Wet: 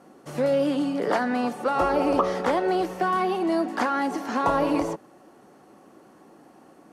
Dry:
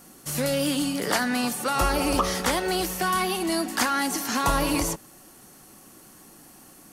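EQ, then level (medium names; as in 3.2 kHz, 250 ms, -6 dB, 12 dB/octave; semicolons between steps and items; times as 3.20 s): band-pass filter 530 Hz, Q 0.84; +5.0 dB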